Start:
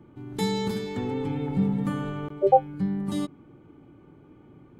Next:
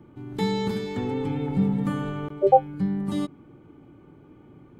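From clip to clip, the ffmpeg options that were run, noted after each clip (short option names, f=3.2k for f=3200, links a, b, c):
-filter_complex "[0:a]acrossover=split=4200[a][b];[b]acompressor=threshold=-50dB:ratio=4:attack=1:release=60[c];[a][c]amix=inputs=2:normalize=0,volume=1.5dB"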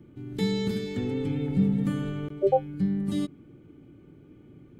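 -af "equalizer=f=940:w=1.3:g=-13"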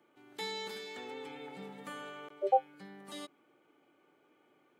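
-af "highpass=f=790:t=q:w=1.6,volume=-3.5dB"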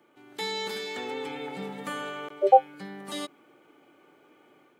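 -af "dynaudnorm=f=420:g=3:m=4dB,volume=6dB"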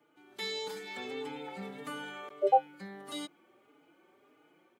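-filter_complex "[0:a]asplit=2[a][b];[b]adelay=4.4,afreqshift=1.6[c];[a][c]amix=inputs=2:normalize=1,volume=-3dB"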